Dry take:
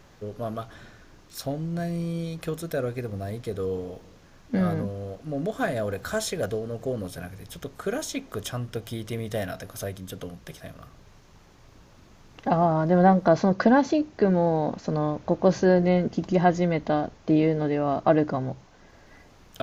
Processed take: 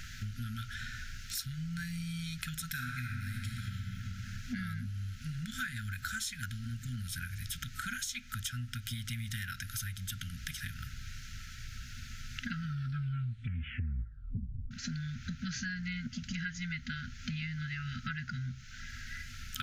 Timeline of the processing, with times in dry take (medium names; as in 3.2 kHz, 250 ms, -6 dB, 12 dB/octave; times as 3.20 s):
2.70–3.76 s: reverb throw, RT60 2.4 s, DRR -2 dB
12.55 s: tape stop 2.16 s
whole clip: FFT band-reject 250–1300 Hz; peaking EQ 190 Hz -14 dB 0.76 oct; compression 6:1, threshold -48 dBFS; trim +11.5 dB